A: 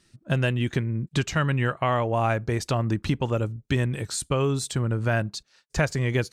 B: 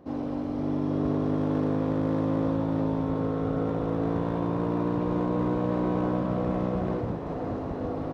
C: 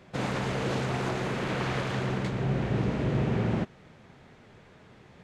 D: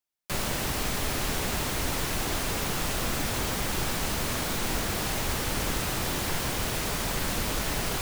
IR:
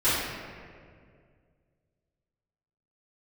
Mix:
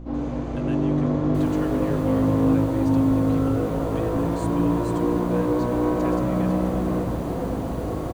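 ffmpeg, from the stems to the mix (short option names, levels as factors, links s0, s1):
-filter_complex "[0:a]adelay=250,volume=0.168[s0];[1:a]highshelf=f=6500:g=-9.5,aeval=exprs='val(0)+0.0141*(sin(2*PI*60*n/s)+sin(2*PI*2*60*n/s)/2+sin(2*PI*3*60*n/s)/3+sin(2*PI*4*60*n/s)/4+sin(2*PI*5*60*n/s)/5)':c=same,volume=1,asplit=2[s1][s2];[s2]volume=0.178[s3];[2:a]equalizer=f=6300:t=o:w=0.77:g=9.5,acrossover=split=180[s4][s5];[s5]acompressor=threshold=0.001:ratio=1.5[s6];[s4][s6]amix=inputs=2:normalize=0,volume=0.168,asplit=2[s7][s8];[s8]volume=0.447[s9];[3:a]adelay=1050,volume=0.133[s10];[4:a]atrim=start_sample=2205[s11];[s3][s9]amix=inputs=2:normalize=0[s12];[s12][s11]afir=irnorm=-1:irlink=0[s13];[s0][s1][s7][s10][s13]amix=inputs=5:normalize=0,bandreject=f=5300:w=13"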